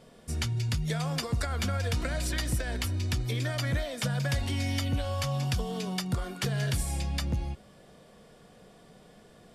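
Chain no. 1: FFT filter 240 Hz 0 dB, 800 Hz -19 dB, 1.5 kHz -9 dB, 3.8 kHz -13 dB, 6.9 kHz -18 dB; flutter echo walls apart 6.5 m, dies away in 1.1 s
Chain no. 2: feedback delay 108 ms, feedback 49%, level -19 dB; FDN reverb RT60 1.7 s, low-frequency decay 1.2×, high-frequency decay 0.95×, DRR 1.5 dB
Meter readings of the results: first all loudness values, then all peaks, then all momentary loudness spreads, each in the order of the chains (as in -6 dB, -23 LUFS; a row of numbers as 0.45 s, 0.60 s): -30.0 LUFS, -27.0 LUFS; -15.5 dBFS, -11.0 dBFS; 8 LU, 8 LU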